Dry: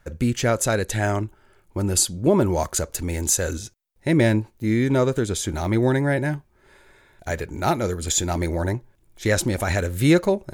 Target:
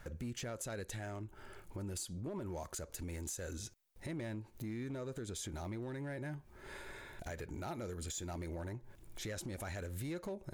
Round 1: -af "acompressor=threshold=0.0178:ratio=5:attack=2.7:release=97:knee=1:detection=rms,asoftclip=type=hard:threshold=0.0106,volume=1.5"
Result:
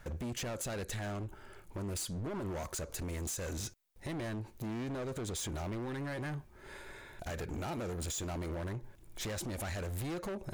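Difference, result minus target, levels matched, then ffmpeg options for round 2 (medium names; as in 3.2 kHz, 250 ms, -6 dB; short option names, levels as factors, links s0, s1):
compression: peak gain reduction -8.5 dB
-af "acompressor=threshold=0.00531:ratio=5:attack=2.7:release=97:knee=1:detection=rms,asoftclip=type=hard:threshold=0.0106,volume=1.5"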